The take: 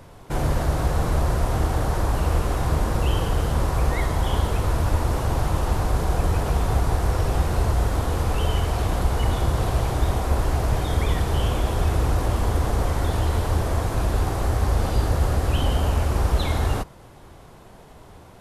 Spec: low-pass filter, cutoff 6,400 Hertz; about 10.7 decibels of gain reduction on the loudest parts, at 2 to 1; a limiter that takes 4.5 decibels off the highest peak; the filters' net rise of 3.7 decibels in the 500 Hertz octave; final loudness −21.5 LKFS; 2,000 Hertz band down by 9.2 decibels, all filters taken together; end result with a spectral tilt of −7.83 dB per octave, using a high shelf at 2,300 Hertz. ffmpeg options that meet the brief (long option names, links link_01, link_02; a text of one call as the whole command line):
ffmpeg -i in.wav -af "lowpass=6400,equalizer=frequency=500:width_type=o:gain=5.5,equalizer=frequency=2000:width_type=o:gain=-8.5,highshelf=frequency=2300:gain=-9,acompressor=threshold=-36dB:ratio=2,volume=13dB,alimiter=limit=-11dB:level=0:latency=1" out.wav